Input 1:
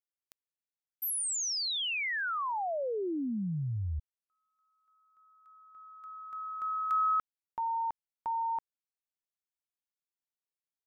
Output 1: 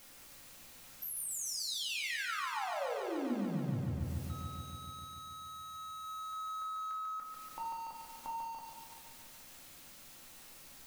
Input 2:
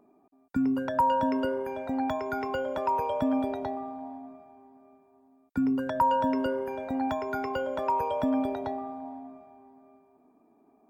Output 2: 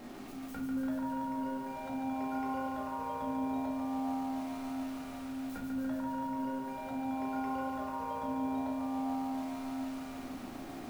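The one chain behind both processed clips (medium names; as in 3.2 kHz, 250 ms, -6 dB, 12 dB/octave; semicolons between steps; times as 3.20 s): jump at every zero crossing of -40.5 dBFS; bass shelf 360 Hz +3 dB; peak limiter -23.5 dBFS; compression 16:1, threshold -35 dBFS; simulated room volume 410 m³, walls furnished, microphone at 2.2 m; bit-crushed delay 144 ms, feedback 80%, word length 9-bit, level -4 dB; trim -7 dB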